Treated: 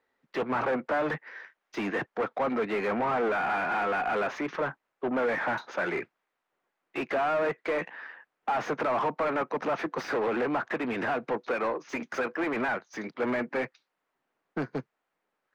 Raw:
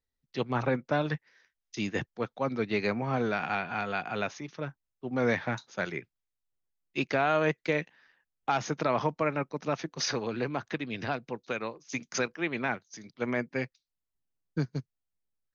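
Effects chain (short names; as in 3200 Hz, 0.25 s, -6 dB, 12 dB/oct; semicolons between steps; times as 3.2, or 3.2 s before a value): compressor 2:1, threshold -33 dBFS, peak gain reduction 6.5 dB; overdrive pedal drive 31 dB, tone 2200 Hz, clips at -19 dBFS; three-band isolator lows -12 dB, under 200 Hz, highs -15 dB, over 2200 Hz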